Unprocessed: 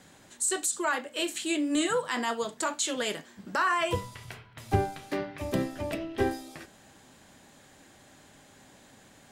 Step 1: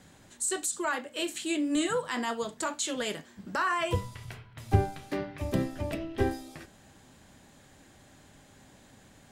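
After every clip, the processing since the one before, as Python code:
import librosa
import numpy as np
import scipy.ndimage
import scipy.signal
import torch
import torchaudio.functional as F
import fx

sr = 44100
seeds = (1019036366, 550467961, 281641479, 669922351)

y = fx.low_shelf(x, sr, hz=150.0, db=9.5)
y = y * librosa.db_to_amplitude(-2.5)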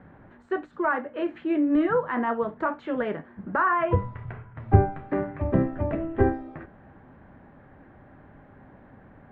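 y = scipy.signal.sosfilt(scipy.signal.butter(4, 1700.0, 'lowpass', fs=sr, output='sos'), x)
y = y * librosa.db_to_amplitude(6.5)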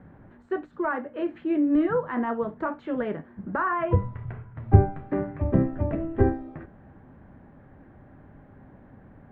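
y = fx.low_shelf(x, sr, hz=450.0, db=7.0)
y = y * librosa.db_to_amplitude(-4.5)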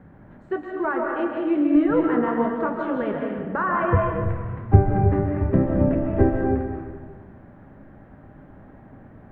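y = fx.rev_freeverb(x, sr, rt60_s=1.6, hf_ratio=0.65, predelay_ms=100, drr_db=0.0)
y = y * librosa.db_to_amplitude(1.5)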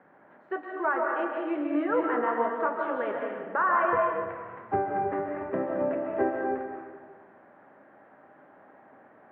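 y = fx.bandpass_edges(x, sr, low_hz=540.0, high_hz=2600.0)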